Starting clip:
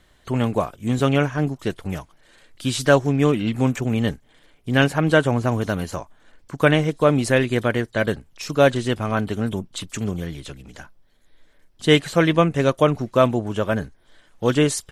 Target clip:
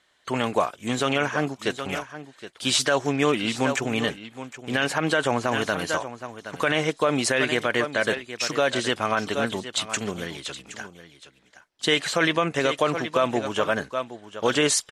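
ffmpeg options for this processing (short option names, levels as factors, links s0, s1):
-af "lowpass=8600,agate=range=0.355:threshold=0.00794:ratio=16:detection=peak,highpass=f=900:p=1,aecho=1:1:769:0.2,alimiter=level_in=5.62:limit=0.891:release=50:level=0:latency=1,volume=0.376"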